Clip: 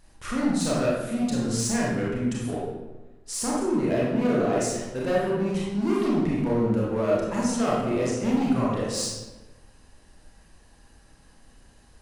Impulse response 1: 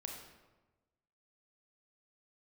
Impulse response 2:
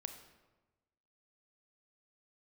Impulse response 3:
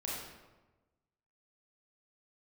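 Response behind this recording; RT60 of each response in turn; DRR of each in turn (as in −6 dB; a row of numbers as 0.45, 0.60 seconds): 3; 1.2, 1.2, 1.2 seconds; 1.0, 7.0, −5.5 decibels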